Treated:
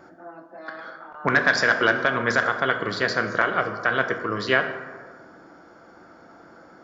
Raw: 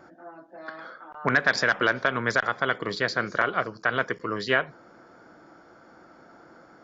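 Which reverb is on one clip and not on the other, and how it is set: plate-style reverb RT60 1.5 s, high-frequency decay 0.45×, DRR 6 dB; trim +2 dB

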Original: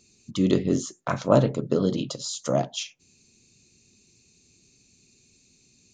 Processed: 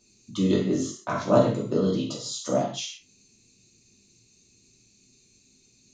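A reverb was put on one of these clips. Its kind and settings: gated-style reverb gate 180 ms falling, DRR -4 dB; trim -6 dB

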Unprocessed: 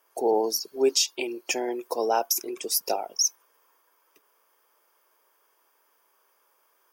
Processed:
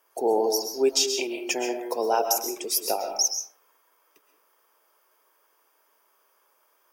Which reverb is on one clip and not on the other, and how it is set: algorithmic reverb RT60 0.57 s, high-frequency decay 0.55×, pre-delay 90 ms, DRR 5 dB

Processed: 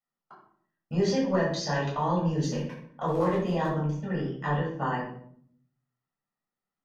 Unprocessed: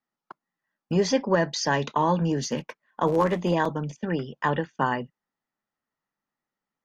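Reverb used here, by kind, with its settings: simulated room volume 860 m³, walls furnished, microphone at 6.6 m; trim -12.5 dB

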